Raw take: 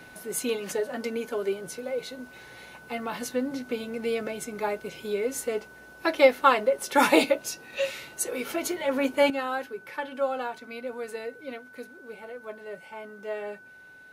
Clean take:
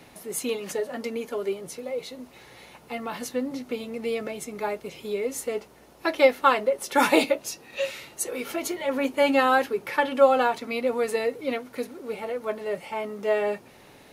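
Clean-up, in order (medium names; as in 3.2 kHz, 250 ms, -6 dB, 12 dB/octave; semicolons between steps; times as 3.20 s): band-stop 1.5 kHz, Q 30; trim 0 dB, from 9.30 s +10 dB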